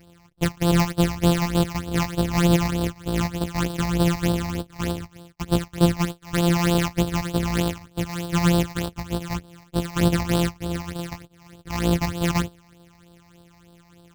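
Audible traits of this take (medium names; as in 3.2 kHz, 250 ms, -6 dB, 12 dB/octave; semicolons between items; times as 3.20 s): a buzz of ramps at a fixed pitch in blocks of 256 samples; phasing stages 8, 3.3 Hz, lowest notch 420–2100 Hz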